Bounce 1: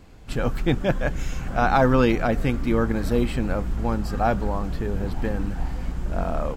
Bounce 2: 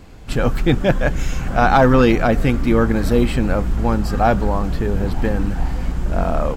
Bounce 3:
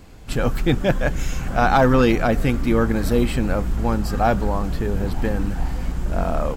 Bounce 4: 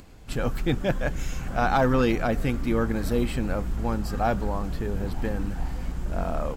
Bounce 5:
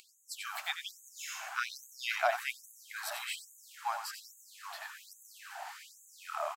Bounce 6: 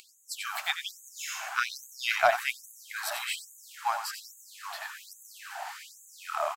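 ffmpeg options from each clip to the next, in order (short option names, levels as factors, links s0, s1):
-af "acontrast=77"
-af "highshelf=f=6800:g=6,volume=0.708"
-af "acompressor=mode=upward:threshold=0.0112:ratio=2.5,volume=0.501"
-af "aecho=1:1:91:0.398,afftfilt=real='re*gte(b*sr/1024,590*pow(6300/590,0.5+0.5*sin(2*PI*1.2*pts/sr)))':imag='im*gte(b*sr/1024,590*pow(6300/590,0.5+0.5*sin(2*PI*1.2*pts/sr)))':win_size=1024:overlap=0.75"
-af "aeval=exprs='0.178*(cos(1*acos(clip(val(0)/0.178,-1,1)))-cos(1*PI/2))+0.00447*(cos(7*acos(clip(val(0)/0.178,-1,1)))-cos(7*PI/2))':c=same,volume=2.24"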